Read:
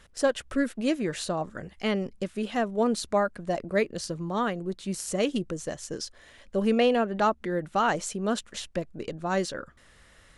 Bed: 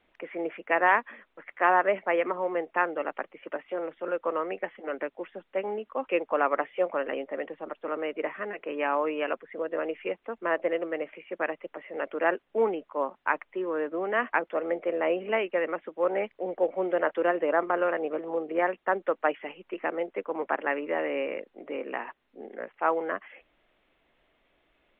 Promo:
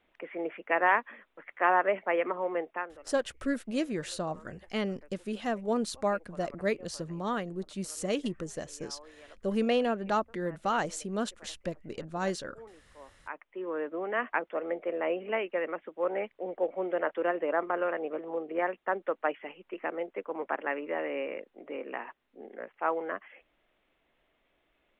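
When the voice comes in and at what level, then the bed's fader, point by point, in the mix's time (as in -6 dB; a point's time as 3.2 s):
2.90 s, -4.5 dB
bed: 2.67 s -2.5 dB
3.07 s -24.5 dB
12.93 s -24.5 dB
13.69 s -4 dB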